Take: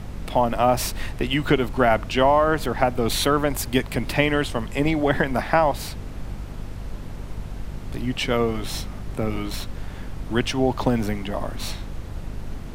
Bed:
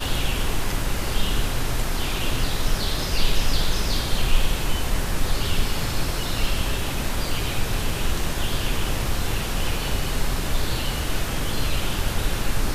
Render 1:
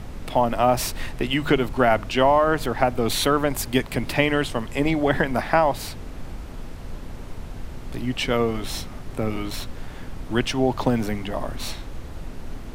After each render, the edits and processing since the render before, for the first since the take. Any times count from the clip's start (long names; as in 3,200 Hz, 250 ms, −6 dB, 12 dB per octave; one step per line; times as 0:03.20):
hum removal 50 Hz, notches 4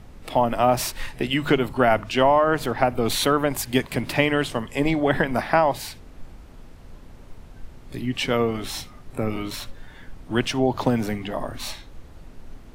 noise reduction from a noise print 9 dB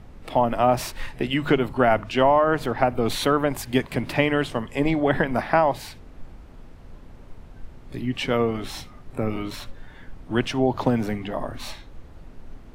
high-shelf EQ 3,800 Hz −7.5 dB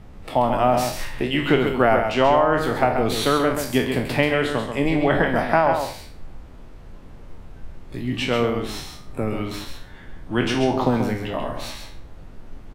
peak hold with a decay on every bin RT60 0.44 s
single-tap delay 134 ms −6.5 dB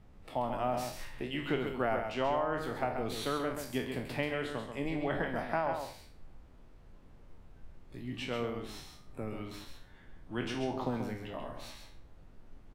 level −14.5 dB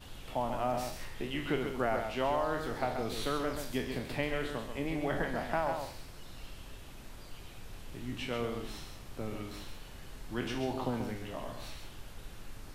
mix in bed −24.5 dB